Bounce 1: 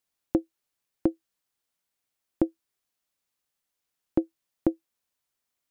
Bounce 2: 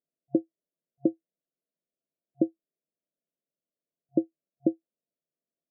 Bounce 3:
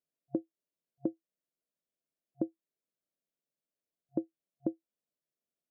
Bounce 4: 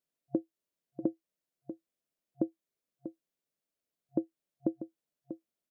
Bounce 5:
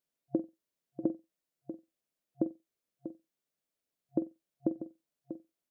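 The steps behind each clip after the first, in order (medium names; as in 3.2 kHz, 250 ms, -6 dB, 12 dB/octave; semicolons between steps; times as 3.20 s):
FFT band-pass 130–700 Hz
compression 1.5:1, threshold -35 dBFS, peak gain reduction 6 dB; trim -3 dB
echo from a far wall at 110 m, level -11 dB; trim +2 dB
flutter echo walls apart 7.9 m, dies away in 0.21 s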